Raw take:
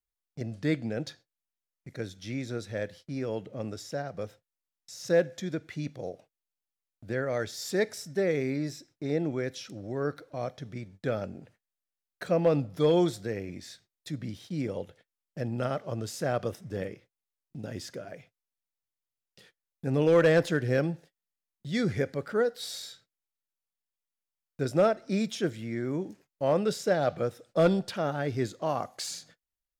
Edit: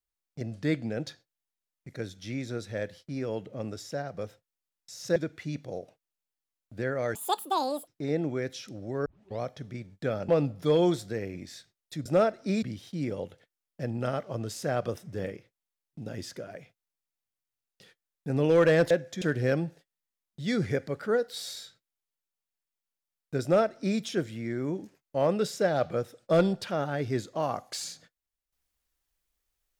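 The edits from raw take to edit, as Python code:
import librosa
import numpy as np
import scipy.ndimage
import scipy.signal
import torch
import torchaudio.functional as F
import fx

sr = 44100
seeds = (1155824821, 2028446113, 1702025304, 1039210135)

y = fx.edit(x, sr, fx.move(start_s=5.16, length_s=0.31, to_s=20.48),
    fx.speed_span(start_s=7.46, length_s=1.43, speed=1.97),
    fx.tape_start(start_s=10.07, length_s=0.35),
    fx.cut(start_s=11.3, length_s=1.13),
    fx.duplicate(start_s=24.69, length_s=0.57, to_s=14.2), tone=tone)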